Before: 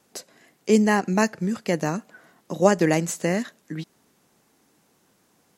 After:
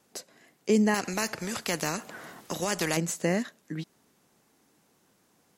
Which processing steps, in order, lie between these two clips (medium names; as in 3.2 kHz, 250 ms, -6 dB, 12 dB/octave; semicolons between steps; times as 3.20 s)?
peak limiter -10 dBFS, peak gain reduction 7.5 dB; 0.94–2.97 s: spectrum-flattening compressor 2:1; trim -3 dB